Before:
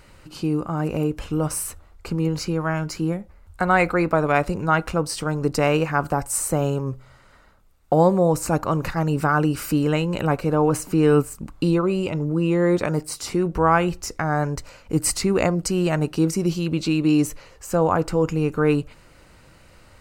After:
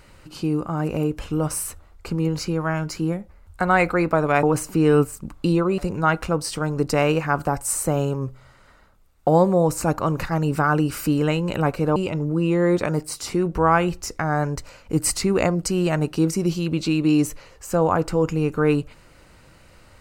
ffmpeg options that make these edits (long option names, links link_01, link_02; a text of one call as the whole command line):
ffmpeg -i in.wav -filter_complex "[0:a]asplit=4[link_01][link_02][link_03][link_04];[link_01]atrim=end=4.432[link_05];[link_02]atrim=start=10.608:end=11.962[link_06];[link_03]atrim=start=4.428:end=10.612[link_07];[link_04]atrim=start=11.958[link_08];[link_05][link_06]acrossfade=duration=0.004:curve1=hsin:curve2=hsin[link_09];[link_09][link_07]acrossfade=duration=0.004:curve1=hsin:curve2=hsin[link_10];[link_10][link_08]acrossfade=duration=0.004:curve1=hsin:curve2=hsin" out.wav